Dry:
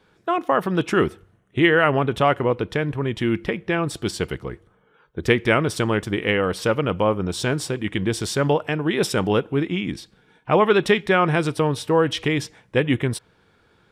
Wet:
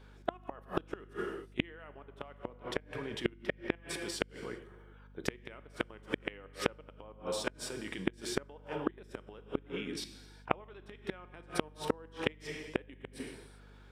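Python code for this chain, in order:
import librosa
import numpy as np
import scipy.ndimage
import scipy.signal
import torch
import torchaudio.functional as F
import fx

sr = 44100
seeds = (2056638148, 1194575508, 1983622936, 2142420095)

y = scipy.signal.sosfilt(scipy.signal.butter(2, 250.0, 'highpass', fs=sr, output='sos'), x)
y = fx.level_steps(y, sr, step_db=22)
y = fx.rev_gated(y, sr, seeds[0], gate_ms=430, shape='falling', drr_db=9.5)
y = fx.gate_flip(y, sr, shuts_db=-19.0, range_db=-32)
y = fx.add_hum(y, sr, base_hz=50, snr_db=16)
y = y * 10.0 ** (3.0 / 20.0)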